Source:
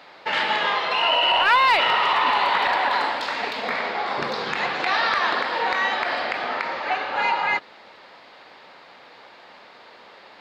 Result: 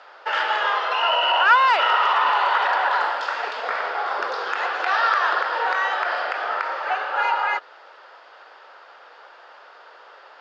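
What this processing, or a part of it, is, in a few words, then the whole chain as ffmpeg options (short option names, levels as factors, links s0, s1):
phone speaker on a table: -af "highpass=f=420:w=0.5412,highpass=f=420:w=1.3066,equalizer=f=1400:t=q:w=4:g=8,equalizer=f=2200:t=q:w=4:g=-8,equalizer=f=4000:t=q:w=4:g=-9,lowpass=f=6700:w=0.5412,lowpass=f=6700:w=1.3066"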